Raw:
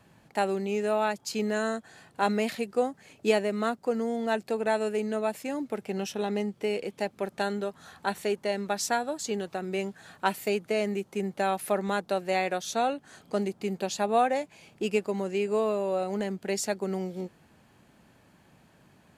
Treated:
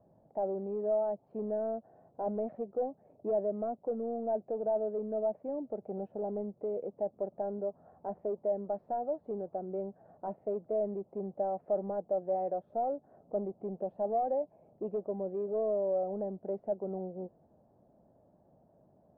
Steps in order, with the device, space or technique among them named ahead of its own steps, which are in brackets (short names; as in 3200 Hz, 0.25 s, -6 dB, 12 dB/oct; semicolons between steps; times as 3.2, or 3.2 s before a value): overdriven synthesiser ladder filter (soft clip -24.5 dBFS, distortion -11 dB; ladder low-pass 720 Hz, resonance 60%); gain +3 dB